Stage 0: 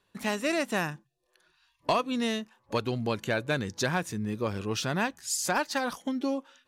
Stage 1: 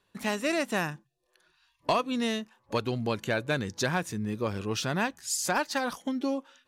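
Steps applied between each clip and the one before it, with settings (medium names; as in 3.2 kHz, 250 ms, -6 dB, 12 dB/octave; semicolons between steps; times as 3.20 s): no audible change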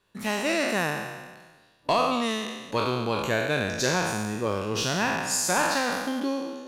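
spectral sustain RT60 1.40 s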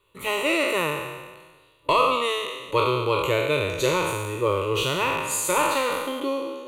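static phaser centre 1.1 kHz, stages 8; trim +6.5 dB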